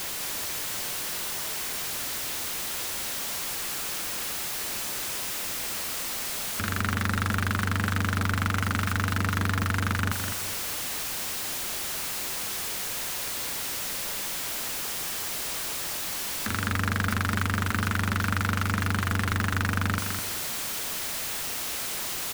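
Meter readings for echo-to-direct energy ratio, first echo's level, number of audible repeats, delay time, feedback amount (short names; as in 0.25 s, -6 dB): -5.5 dB, -6.0 dB, 2, 0.207 s, 30%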